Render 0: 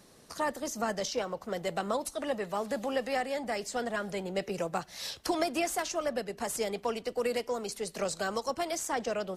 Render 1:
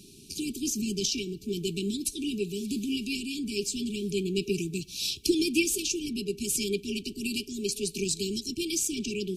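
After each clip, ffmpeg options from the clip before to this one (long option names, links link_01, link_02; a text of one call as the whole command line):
ffmpeg -i in.wav -af "afftfilt=real='re*(1-between(b*sr/4096,420,2300))':imag='im*(1-between(b*sr/4096,420,2300))':win_size=4096:overlap=0.75,volume=8dB" out.wav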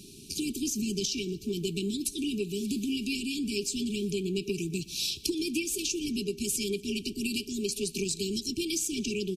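ffmpeg -i in.wav -af "acompressor=threshold=-30dB:ratio=6,aecho=1:1:120|240|360|480:0.0708|0.0418|0.0246|0.0145,volume=2.5dB" out.wav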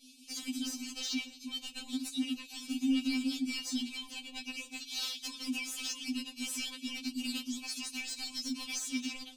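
ffmpeg -i in.wav -filter_complex "[0:a]agate=range=-33dB:threshold=-44dB:ratio=3:detection=peak,asplit=2[link_01][link_02];[link_02]highpass=frequency=720:poles=1,volume=19dB,asoftclip=type=tanh:threshold=-15dB[link_03];[link_01][link_03]amix=inputs=2:normalize=0,lowpass=frequency=3200:poles=1,volume=-6dB,afftfilt=real='re*3.46*eq(mod(b,12),0)':imag='im*3.46*eq(mod(b,12),0)':win_size=2048:overlap=0.75,volume=-6.5dB" out.wav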